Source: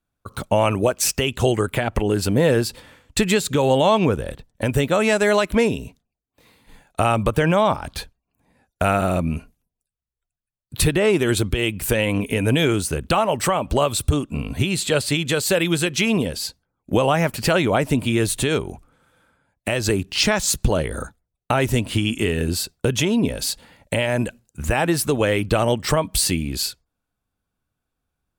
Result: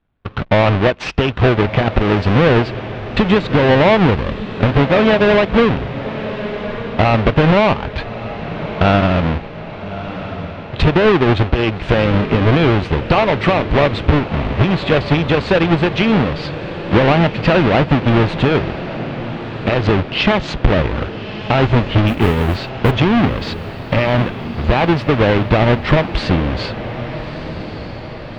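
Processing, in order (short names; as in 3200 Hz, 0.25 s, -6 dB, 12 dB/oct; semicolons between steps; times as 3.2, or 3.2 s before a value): half-waves squared off; LPF 3300 Hz 24 dB/oct; in parallel at -0.5 dB: compressor, threshold -27 dBFS, peak gain reduction 16.5 dB; 22.07–22.91 on the sum: modulation noise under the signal 31 dB; diffused feedback echo 1.248 s, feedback 56%, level -12 dB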